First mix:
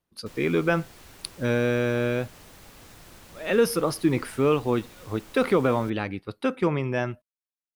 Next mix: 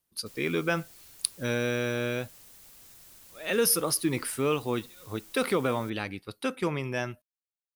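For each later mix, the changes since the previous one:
speech +8.0 dB; master: add pre-emphasis filter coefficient 0.8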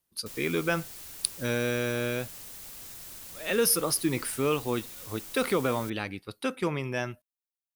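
background +8.5 dB

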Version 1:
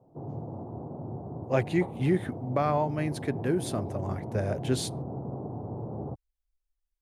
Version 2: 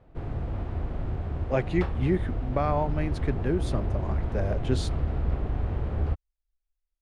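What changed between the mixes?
background: remove elliptic band-pass 120–900 Hz, stop band 40 dB; master: add distance through air 74 m

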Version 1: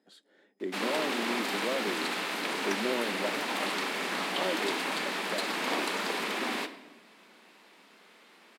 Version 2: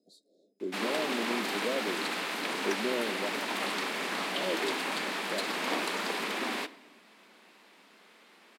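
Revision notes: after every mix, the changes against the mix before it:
speech: add Chebyshev band-stop 690–3900 Hz, order 5; background: send -6.5 dB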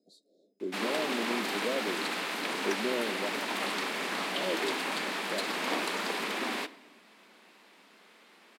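speech: add treble shelf 9.6 kHz -5 dB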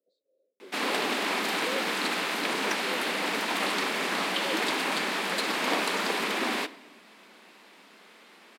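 speech: add vowel filter e; background +4.5 dB

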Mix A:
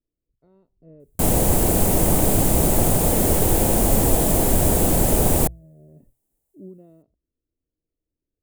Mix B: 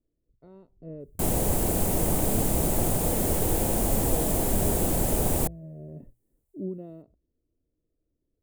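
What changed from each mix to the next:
speech +7.0 dB; background -7.0 dB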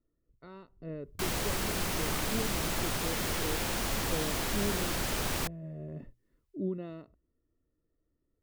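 background -9.5 dB; master: add high-order bell 2.5 kHz +15.5 dB 2.8 oct

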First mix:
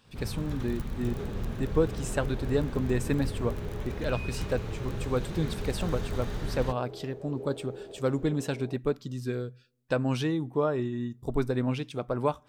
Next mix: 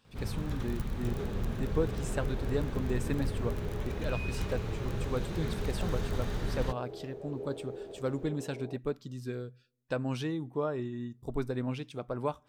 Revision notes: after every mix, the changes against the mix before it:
speech -5.5 dB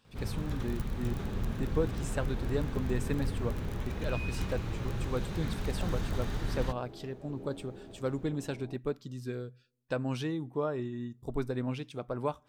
second sound: remove resonant high-pass 440 Hz, resonance Q 3.7

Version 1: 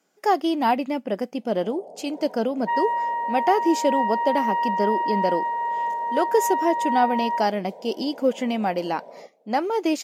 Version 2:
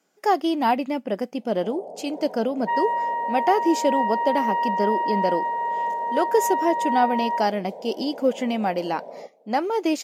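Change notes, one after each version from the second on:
first sound +4.5 dB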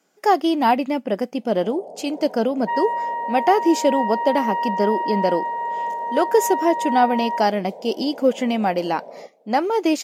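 speech +3.5 dB

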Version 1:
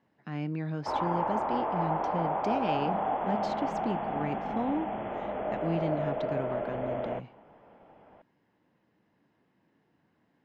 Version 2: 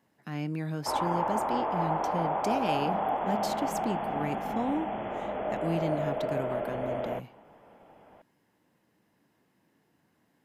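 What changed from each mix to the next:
master: remove distance through air 180 m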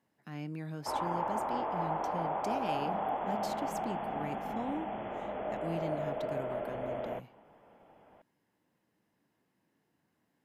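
speech -7.0 dB; background -4.5 dB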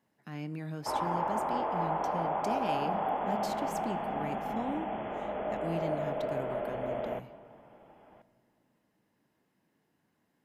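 reverb: on, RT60 2.7 s

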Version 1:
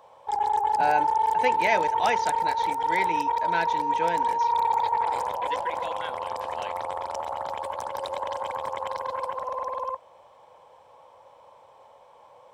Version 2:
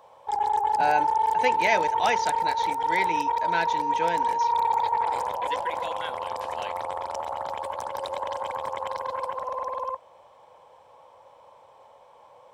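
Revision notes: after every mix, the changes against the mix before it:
speech: add treble shelf 4.5 kHz +7 dB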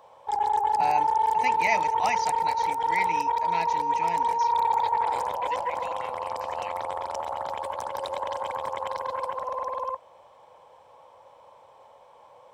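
speech: add static phaser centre 2.3 kHz, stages 8

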